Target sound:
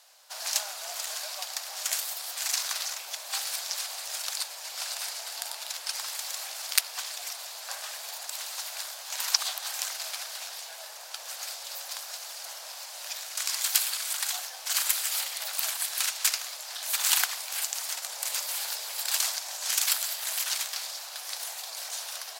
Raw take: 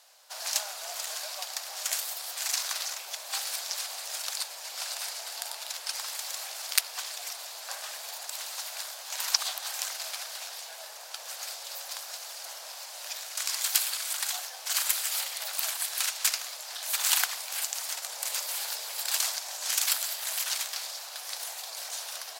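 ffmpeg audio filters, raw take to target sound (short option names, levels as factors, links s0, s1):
-af "lowshelf=f=250:g=-10.5,volume=1.12"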